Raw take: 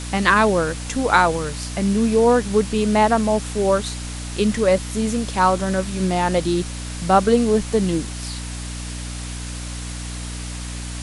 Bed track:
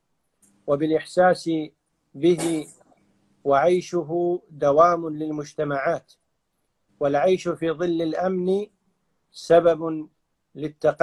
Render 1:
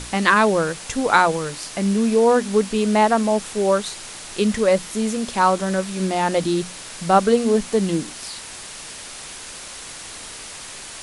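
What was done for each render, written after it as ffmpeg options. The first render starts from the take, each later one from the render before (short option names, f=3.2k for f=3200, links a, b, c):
-af "bandreject=f=60:t=h:w=6,bandreject=f=120:t=h:w=6,bandreject=f=180:t=h:w=6,bandreject=f=240:t=h:w=6,bandreject=f=300:t=h:w=6"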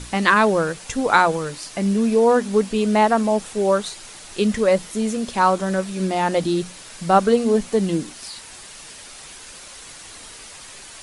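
-af "afftdn=nr=6:nf=-37"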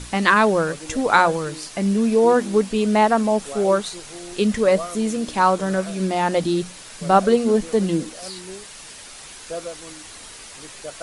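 -filter_complex "[1:a]volume=-15.5dB[a];[0:a][a]amix=inputs=2:normalize=0"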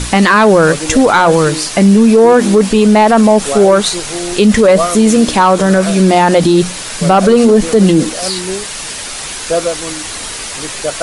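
-af "acontrast=80,alimiter=level_in=9.5dB:limit=-1dB:release=50:level=0:latency=1"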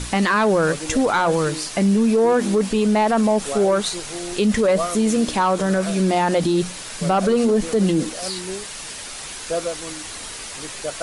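-af "volume=-10dB"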